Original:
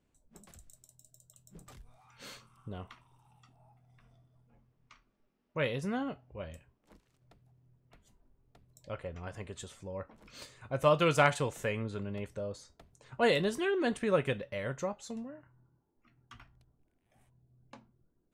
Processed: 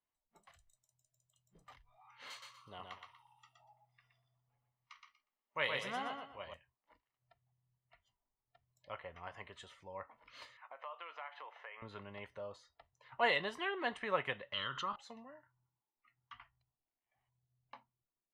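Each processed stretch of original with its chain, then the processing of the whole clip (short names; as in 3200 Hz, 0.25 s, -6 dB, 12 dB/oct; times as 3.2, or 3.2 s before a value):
2.3–6.54 tone controls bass -3 dB, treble +13 dB + feedback echo 0.12 s, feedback 30%, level -4 dB
10.57–11.82 BPF 610–2600 Hz + compressor 4:1, threshold -45 dBFS
14.53–14.96 EQ curve 350 Hz 0 dB, 710 Hz -16 dB, 1300 Hz +9 dB, 2200 Hz -13 dB, 3100 Hz +14 dB, 5700 Hz +1 dB, 12000 Hz -12 dB + fast leveller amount 70%
whole clip: spectral noise reduction 12 dB; three-band isolator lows -18 dB, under 520 Hz, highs -19 dB, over 3700 Hz; comb 1 ms, depth 39%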